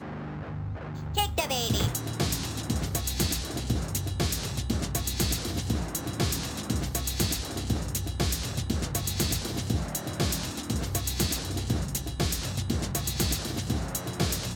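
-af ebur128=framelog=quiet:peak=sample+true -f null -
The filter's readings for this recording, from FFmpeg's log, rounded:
Integrated loudness:
  I:         -29.6 LUFS
  Threshold: -39.6 LUFS
Loudness range:
  LRA:         0.9 LU
  Threshold: -49.5 LUFS
  LRA low:   -29.8 LUFS
  LRA high:  -28.9 LUFS
Sample peak:
  Peak:      -10.8 dBFS
True peak:
  Peak:      -10.8 dBFS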